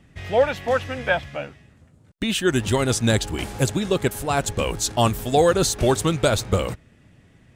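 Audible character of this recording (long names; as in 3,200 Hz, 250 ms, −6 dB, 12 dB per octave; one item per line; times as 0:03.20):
background noise floor −55 dBFS
spectral slope −4.5 dB per octave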